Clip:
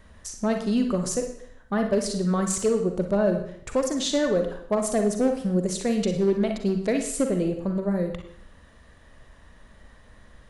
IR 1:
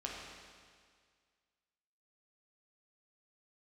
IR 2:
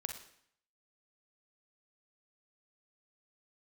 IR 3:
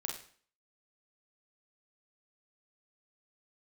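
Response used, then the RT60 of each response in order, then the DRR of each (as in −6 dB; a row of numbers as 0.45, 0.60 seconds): 2; 1.9, 0.65, 0.50 seconds; −3.5, 4.5, 0.5 decibels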